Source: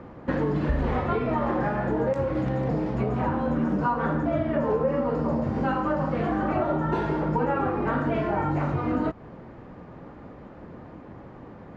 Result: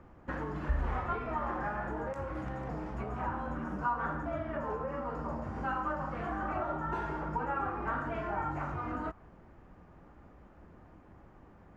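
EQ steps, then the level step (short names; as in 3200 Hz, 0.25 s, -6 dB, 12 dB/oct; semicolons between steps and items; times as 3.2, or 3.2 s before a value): ten-band EQ 125 Hz -11 dB, 250 Hz -9 dB, 500 Hz -11 dB, 1000 Hz -6 dB, 2000 Hz -6 dB, 4000 Hz -11 dB; dynamic EQ 1200 Hz, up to +7 dB, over -52 dBFS, Q 0.84; -2.0 dB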